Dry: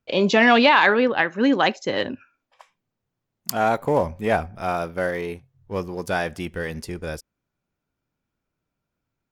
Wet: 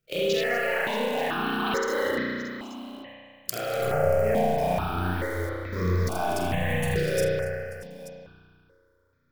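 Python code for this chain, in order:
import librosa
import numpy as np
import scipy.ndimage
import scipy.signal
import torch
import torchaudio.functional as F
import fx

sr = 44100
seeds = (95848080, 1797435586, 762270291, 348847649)

y = fx.over_compress(x, sr, threshold_db=-25.0, ratio=-1.0)
y = fx.transient(y, sr, attack_db=-11, sustain_db=4)
y = fx.low_shelf(y, sr, hz=290.0, db=-10.5, at=(1.17, 3.78))
y = fx.echo_multitap(y, sr, ms=(46, 81, 207, 244, 632, 886), db=(-7.5, -6.0, -19.0, -13.0, -15.5, -16.0))
y = fx.quant_float(y, sr, bits=2)
y = fx.level_steps(y, sr, step_db=16)
y = fx.high_shelf(y, sr, hz=8300.0, db=3.5)
y = fx.rev_spring(y, sr, rt60_s=2.0, pass_ms=(33,), chirp_ms=45, drr_db=-8.0)
y = fx.phaser_held(y, sr, hz=2.3, low_hz=250.0, high_hz=2800.0)
y = F.gain(torch.from_numpy(y), 1.5).numpy()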